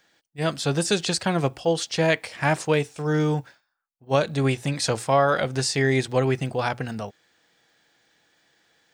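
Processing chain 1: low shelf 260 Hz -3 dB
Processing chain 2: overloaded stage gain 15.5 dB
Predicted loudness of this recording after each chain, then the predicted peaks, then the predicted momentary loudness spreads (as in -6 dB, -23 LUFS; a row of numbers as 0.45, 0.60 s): -24.5, -24.5 LUFS; -6.5, -15.5 dBFS; 7, 6 LU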